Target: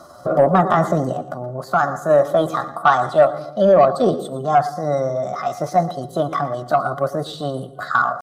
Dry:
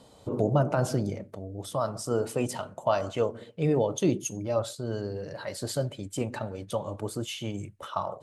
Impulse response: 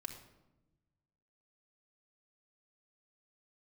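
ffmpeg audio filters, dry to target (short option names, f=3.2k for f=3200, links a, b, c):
-filter_complex "[0:a]acrossover=split=3400[a][b];[b]acompressor=threshold=-54dB:ratio=4:attack=1:release=60[c];[a][c]amix=inputs=2:normalize=0,asplit=2[d][e];[1:a]atrim=start_sample=2205,adelay=113[f];[e][f]afir=irnorm=-1:irlink=0,volume=-11dB[g];[d][g]amix=inputs=2:normalize=0,asetrate=57191,aresample=44100,atempo=0.771105,superequalizer=8b=2.82:10b=3.55:12b=0.316:15b=1.41,acontrast=83"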